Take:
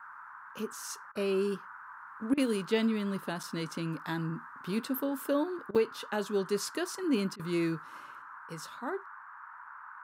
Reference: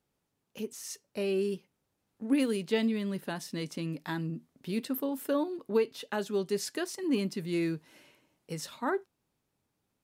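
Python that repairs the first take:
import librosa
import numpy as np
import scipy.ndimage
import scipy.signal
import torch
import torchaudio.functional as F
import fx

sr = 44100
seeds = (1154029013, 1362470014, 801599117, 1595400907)

y = fx.fix_interpolate(x, sr, at_s=(3.43, 5.75), length_ms=5.6)
y = fx.fix_interpolate(y, sr, at_s=(1.12, 2.34, 5.71, 7.36), length_ms=33.0)
y = fx.noise_reduce(y, sr, print_start_s=9.19, print_end_s=9.69, reduce_db=30.0)
y = fx.gain(y, sr, db=fx.steps((0.0, 0.0), (8.22, 5.5)))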